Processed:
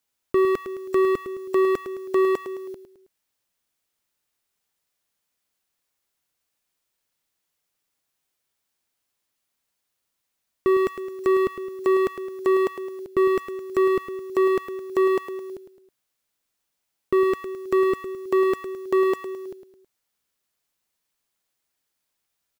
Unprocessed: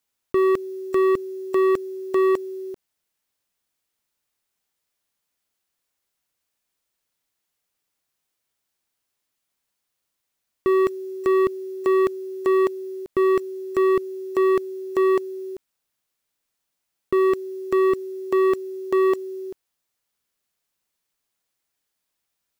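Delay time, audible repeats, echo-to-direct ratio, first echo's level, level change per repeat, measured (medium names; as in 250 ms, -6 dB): 107 ms, 3, -9.0 dB, -10.0 dB, -7.0 dB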